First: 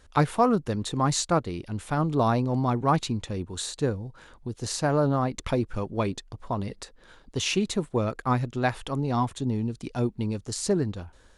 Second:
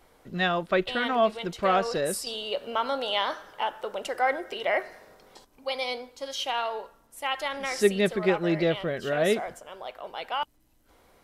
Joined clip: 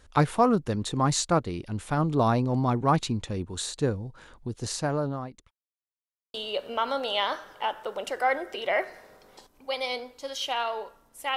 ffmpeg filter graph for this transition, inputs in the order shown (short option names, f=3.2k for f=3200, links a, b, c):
-filter_complex "[0:a]apad=whole_dur=11.36,atrim=end=11.36,asplit=2[a][b];[a]atrim=end=5.51,asetpts=PTS-STARTPTS,afade=t=out:st=4.58:d=0.93[c];[b]atrim=start=5.51:end=6.34,asetpts=PTS-STARTPTS,volume=0[d];[1:a]atrim=start=2.32:end=7.34,asetpts=PTS-STARTPTS,afade=t=in:d=0.004:c=hsin[e];[c][d][e]concat=n=3:v=0:a=1"